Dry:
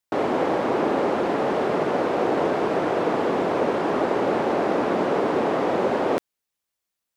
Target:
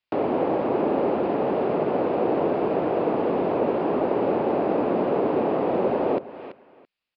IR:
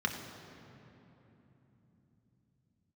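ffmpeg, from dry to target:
-filter_complex "[0:a]equalizer=f=2.6k:t=o:w=0.51:g=8.5,asplit=2[a][b];[b]adelay=334,lowpass=f=3.3k:p=1,volume=-16dB,asplit=2[c][d];[d]adelay=334,lowpass=f=3.3k:p=1,volume=0.2[e];[a][c][e]amix=inputs=3:normalize=0,aresample=11025,aresample=44100,acrossover=split=440|990[f][g][h];[h]acompressor=threshold=-44dB:ratio=6[i];[f][g][i]amix=inputs=3:normalize=0"

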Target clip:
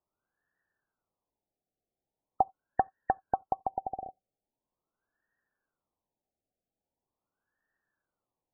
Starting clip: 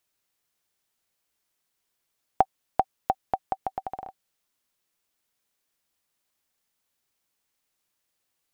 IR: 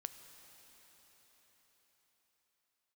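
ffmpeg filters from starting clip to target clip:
-filter_complex "[0:a]asettb=1/sr,asplit=3[a][b][c];[a]atrim=end=2.424[d];[b]atrim=start=2.42:end=3.59,asetpts=PTS-STARTPTS,afade=t=in:d=0.004:c=qsin,afade=t=out:st=1.166:d=0.004:c=qsin,asuperstop=centerf=1200:order=20:qfactor=7.5[e];[c]atrim=start=3.586[f];[d][e]acrossfade=d=0.004:c1=hsin:c2=qsin[g];[g][f]acrossfade=d=0.004:c1=qsin:c2=hsin,asoftclip=type=tanh:threshold=-13.5dB,aexciter=amount=14:drive=6.6:freq=2k,asplit=2[h][i];[1:a]atrim=start_sample=2205,atrim=end_sample=3969[j];[i][j]afir=irnorm=-1:irlink=0,volume=-7dB[k];[h][k]amix=inputs=2:normalize=0,afftfilt=real='re*lt(b*sr/1024,790*pow(1900/790,0.5+0.5*sin(2*PI*0.42*pts/sr)))':imag='im*lt(b*sr/1024,790*pow(1900/790,0.5+0.5*sin(2*PI*0.42*pts/sr)))':win_size=1024:overlap=0.75,volume=-2.5dB"

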